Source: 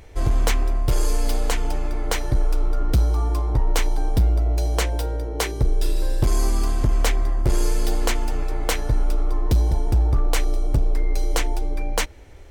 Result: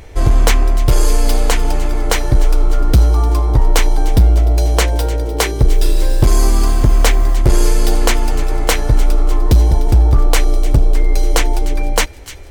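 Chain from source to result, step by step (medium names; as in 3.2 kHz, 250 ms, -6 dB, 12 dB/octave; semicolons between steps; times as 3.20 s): feedback echo behind a high-pass 300 ms, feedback 64%, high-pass 1.9 kHz, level -15 dB; 5.69–7.35 s: word length cut 8-bit, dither none; trim +8.5 dB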